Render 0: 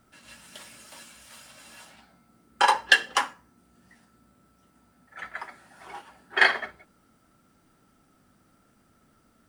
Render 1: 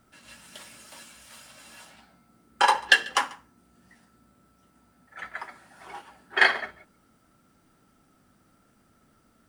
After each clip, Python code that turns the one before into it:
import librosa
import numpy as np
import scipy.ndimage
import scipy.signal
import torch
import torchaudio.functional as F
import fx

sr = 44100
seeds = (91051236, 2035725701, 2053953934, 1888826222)

y = x + 10.0 ** (-22.0 / 20.0) * np.pad(x, (int(142 * sr / 1000.0), 0))[:len(x)]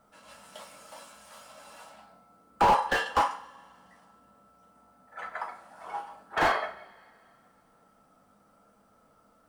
y = fx.band_shelf(x, sr, hz=780.0, db=10.5, octaves=1.7)
y = fx.rev_double_slope(y, sr, seeds[0], early_s=0.32, late_s=2.3, knee_db=-27, drr_db=2.5)
y = fx.slew_limit(y, sr, full_power_hz=240.0)
y = y * librosa.db_to_amplitude(-6.5)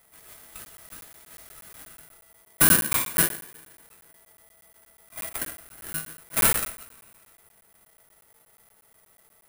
y = (np.kron(scipy.signal.resample_poly(x, 1, 4), np.eye(4)[0]) * 4)[:len(x)]
y = fx.buffer_crackle(y, sr, first_s=0.65, period_s=0.12, block=512, kind='zero')
y = y * np.sign(np.sin(2.0 * np.pi * 660.0 * np.arange(len(y)) / sr))
y = y * librosa.db_to_amplitude(-2.0)